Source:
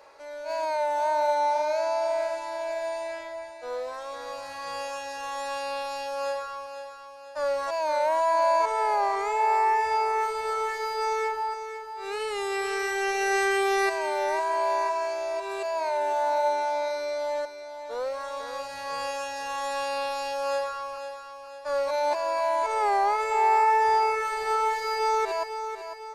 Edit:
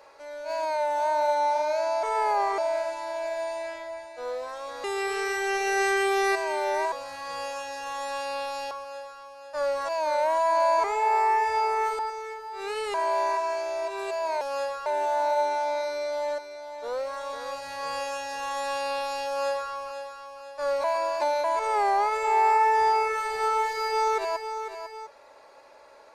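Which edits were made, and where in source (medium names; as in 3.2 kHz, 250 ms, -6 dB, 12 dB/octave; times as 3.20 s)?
6.08–6.53 s: move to 15.93 s
8.66–9.21 s: move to 2.03 s
10.36–11.43 s: delete
12.38–14.46 s: move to 4.29 s
21.91–22.51 s: reverse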